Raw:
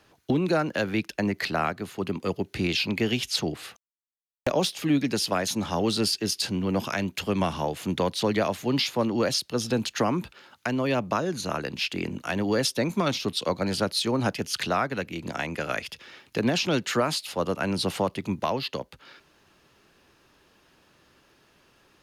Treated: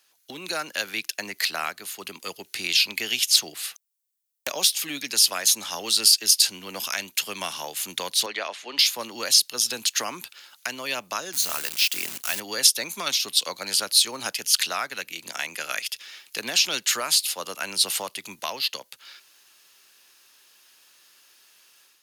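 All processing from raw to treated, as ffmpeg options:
ffmpeg -i in.wav -filter_complex "[0:a]asettb=1/sr,asplit=3[link_01][link_02][link_03];[link_01]atrim=end=8.264[link_04];[link_02]atrim=start=8.26:end=8.79,asetpts=PTS-STARTPTS,afade=type=in:duration=0.004:curve=qsin,afade=type=out:start_time=0.526:duration=0.004:curve=qsin,lowpass=frequency=9500:width=0.5412,lowpass=frequency=9500:width=1.3066,acrossover=split=260 4000:gain=0.1 1 0.158[link_05][link_06][link_07];[link_05][link_06][link_07]amix=inputs=3:normalize=0[link_08];[link_03]atrim=start=8.786[link_09];[link_04][link_08]acrossfade=duration=0.004:curve1=hsin:curve2=qsin[link_10];[link_10][link_09]acrossfade=duration=0.004:curve1=qsin:curve2=hsin,asettb=1/sr,asplit=3[link_11][link_12][link_13];[link_11]atrim=end=11.334[link_14];[link_12]atrim=start=11.33:end=12.4,asetpts=PTS-STARTPTS,afade=type=in:duration=0.004:curve=qsin,afade=type=out:start_time=1.066:duration=0.004:curve=qsin,highpass=48,equalizer=frequency=70:width=1.2:gain=7.5,acrusher=bits=7:dc=4:mix=0:aa=0.000001[link_15];[link_13]atrim=start=12.396[link_16];[link_14][link_15]acrossfade=duration=0.004:curve1=hsin:curve2=qsin[link_17];[link_17][link_16]acrossfade=duration=0.004:curve1=qsin:curve2=hsin,aderivative,dynaudnorm=framelen=240:gausssize=3:maxgain=8dB,volume=5dB" out.wav

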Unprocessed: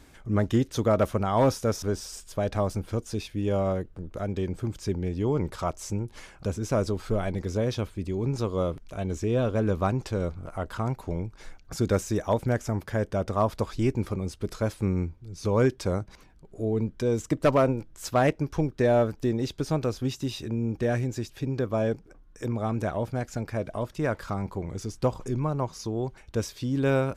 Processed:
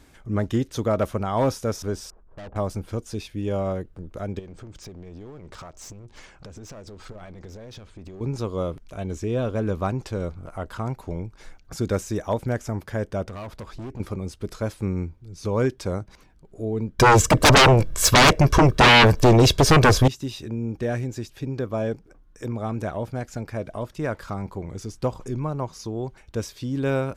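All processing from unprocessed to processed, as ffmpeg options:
ffmpeg -i in.wav -filter_complex "[0:a]asettb=1/sr,asplit=3[link_01][link_02][link_03];[link_01]atrim=end=2.104[link_04];[link_02]atrim=start=2.1:end=2.56,asetpts=PTS-STARTPTS,afade=type=in:duration=0.004:curve=qsin,afade=type=out:start_time=0.456:duration=0.004:curve=qsin,lowpass=frequency=1100:width=0.5412,lowpass=frequency=1100:width=1.3066,aeval=exprs='(tanh(70.8*val(0)+0.3)-tanh(0.3))/70.8':channel_layout=same[link_05];[link_03]atrim=start=2.556[link_06];[link_04][link_05]acrossfade=duration=0.004:curve1=hsin:curve2=qsin[link_07];[link_07][link_06]acrossfade=duration=0.004:curve1=qsin:curve2=hsin,asettb=1/sr,asplit=3[link_08][link_09][link_10];[link_08]atrim=end=4.394[link_11];[link_09]atrim=start=4.39:end=8.21,asetpts=PTS-STARTPTS,afade=type=in:duration=0.004:curve=qsin,afade=type=out:start_time=3.816:duration=0.004:curve=qsin,lowpass=frequency=8200:width=0.5412,lowpass=frequency=8200:width=1.3066,acompressor=threshold=-34dB:ratio=16:attack=3.2:release=140:knee=1:detection=peak,aeval=exprs='clip(val(0),-1,0.00891)':channel_layout=same[link_12];[link_10]atrim=start=8.206[link_13];[link_11][link_12]acrossfade=duration=0.004:curve1=hsin:curve2=qsin[link_14];[link_14][link_13]acrossfade=duration=0.004:curve1=qsin:curve2=hsin,asettb=1/sr,asplit=3[link_15][link_16][link_17];[link_15]atrim=end=13.284[link_18];[link_16]atrim=start=13.28:end=14,asetpts=PTS-STARTPTS,afade=type=in:duration=0.004:curve=qsin,afade=type=out:start_time=0.716:duration=0.004:curve=qsin,highshelf=frequency=2600:gain=-6.5,acompressor=threshold=-28dB:ratio=3:attack=3.2:release=140:knee=1:detection=peak,volume=32dB,asoftclip=hard,volume=-32dB[link_19];[link_17]atrim=start=13.996[link_20];[link_18][link_19]acrossfade=duration=0.004:curve1=hsin:curve2=qsin[link_21];[link_21][link_20]acrossfade=duration=0.004:curve1=qsin:curve2=hsin,asettb=1/sr,asplit=3[link_22][link_23][link_24];[link_22]atrim=end=16.994[link_25];[link_23]atrim=start=16.99:end=20.08,asetpts=PTS-STARTPTS,afade=type=in:duration=0.004:curve=qsin,afade=type=out:start_time=3.086:duration=0.004:curve=qsin,aecho=1:1:1.8:0.51,atrim=end_sample=136269,aeval=exprs='0.335*sin(PI/2*5.62*val(0)/0.335)':channel_layout=same[link_26];[link_24]atrim=start=20.076[link_27];[link_25][link_26]acrossfade=duration=0.004:curve1=hsin:curve2=qsin[link_28];[link_28][link_27]acrossfade=duration=0.004:curve1=qsin:curve2=hsin" out.wav

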